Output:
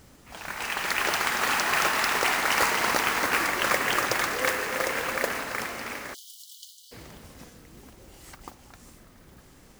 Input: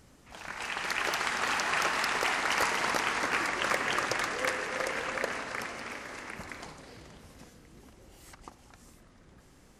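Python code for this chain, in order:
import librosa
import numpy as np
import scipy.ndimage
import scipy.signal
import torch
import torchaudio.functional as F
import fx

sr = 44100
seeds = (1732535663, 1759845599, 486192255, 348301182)

y = fx.mod_noise(x, sr, seeds[0], snr_db=11)
y = fx.brickwall_highpass(y, sr, low_hz=2900.0, at=(6.13, 6.91), fade=0.02)
y = y * librosa.db_to_amplitude(4.5)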